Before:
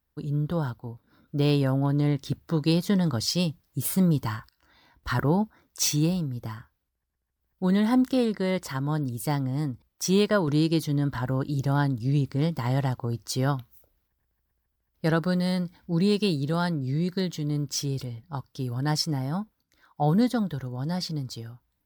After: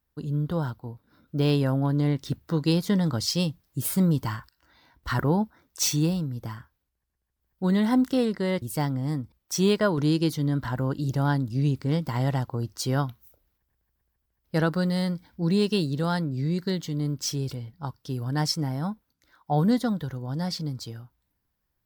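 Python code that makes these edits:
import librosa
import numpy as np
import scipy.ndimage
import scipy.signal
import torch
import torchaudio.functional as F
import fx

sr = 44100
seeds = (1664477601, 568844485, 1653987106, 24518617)

y = fx.edit(x, sr, fx.cut(start_s=8.62, length_s=0.5), tone=tone)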